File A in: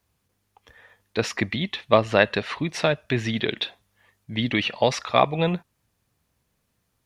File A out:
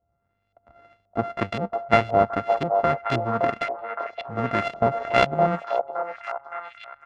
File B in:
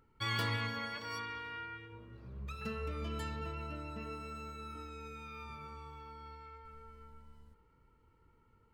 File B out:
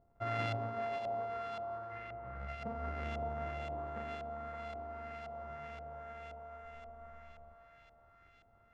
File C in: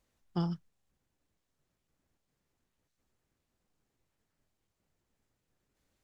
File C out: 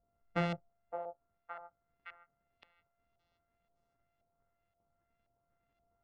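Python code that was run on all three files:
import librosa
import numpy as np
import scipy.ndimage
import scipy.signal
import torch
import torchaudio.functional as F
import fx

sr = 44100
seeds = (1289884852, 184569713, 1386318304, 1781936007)

y = np.r_[np.sort(x[:len(x) // 64 * 64].reshape(-1, 64), axis=1).ravel(), x[len(x) // 64 * 64:]]
y = fx.echo_stepped(y, sr, ms=566, hz=690.0, octaves=0.7, feedback_pct=70, wet_db=-2.5)
y = fx.filter_lfo_lowpass(y, sr, shape='saw_up', hz=1.9, low_hz=680.0, high_hz=3400.0, q=1.3)
y = y * 10.0 ** (-1.5 / 20.0)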